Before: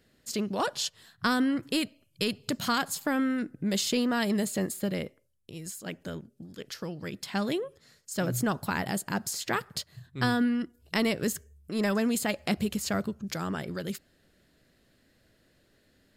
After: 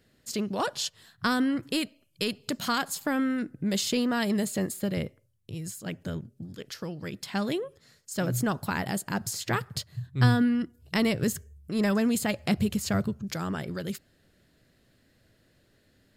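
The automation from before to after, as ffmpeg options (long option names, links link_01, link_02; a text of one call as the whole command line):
ffmpeg -i in.wav -af "asetnsamples=nb_out_samples=441:pad=0,asendcmd='1.73 equalizer g -5.5;3.01 equalizer g 4.5;4.97 equalizer g 14;6.56 equalizer g 3.5;9.21 equalizer g 13.5;13.22 equalizer g 5',equalizer=frequency=110:width_type=o:width=0.96:gain=3" out.wav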